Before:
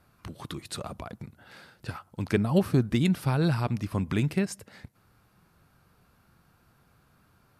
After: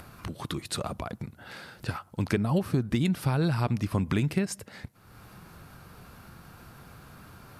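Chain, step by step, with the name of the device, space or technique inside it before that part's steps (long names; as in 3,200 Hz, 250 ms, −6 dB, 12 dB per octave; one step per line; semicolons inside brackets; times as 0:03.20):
upward and downward compression (upward compression, threshold −42 dBFS; downward compressor 6 to 1, threshold −26 dBFS, peak gain reduction 9.5 dB)
level +4 dB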